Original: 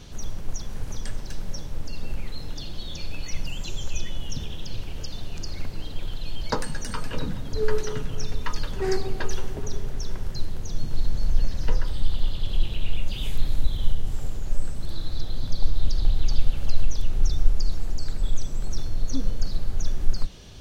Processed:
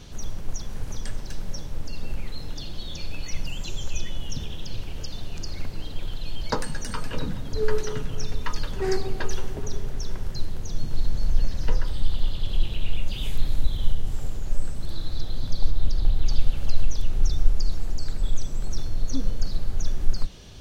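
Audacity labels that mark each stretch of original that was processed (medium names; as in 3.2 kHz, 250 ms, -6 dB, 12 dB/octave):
15.710000	16.260000	peaking EQ 5.4 kHz -4 dB 2 oct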